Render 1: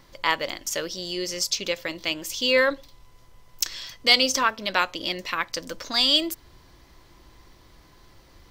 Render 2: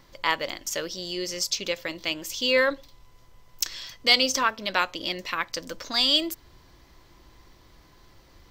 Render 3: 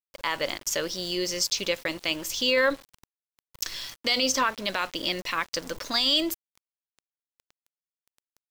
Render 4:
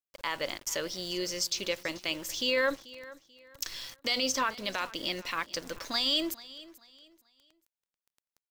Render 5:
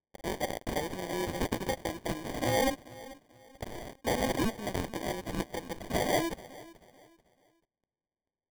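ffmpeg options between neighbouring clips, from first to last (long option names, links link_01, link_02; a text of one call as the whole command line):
ffmpeg -i in.wav -af "equalizer=frequency=9700:width=6.8:gain=-8.5,volume=-1.5dB" out.wav
ffmpeg -i in.wav -af "alimiter=limit=-16dB:level=0:latency=1:release=31,aeval=exprs='val(0)*gte(abs(val(0)),0.0075)':channel_layout=same,volume=2.5dB" out.wav
ffmpeg -i in.wav -af "aecho=1:1:437|874|1311:0.112|0.0348|0.0108,volume=-5dB" out.wav
ffmpeg -i in.wav -af "acrusher=samples=33:mix=1:aa=0.000001" out.wav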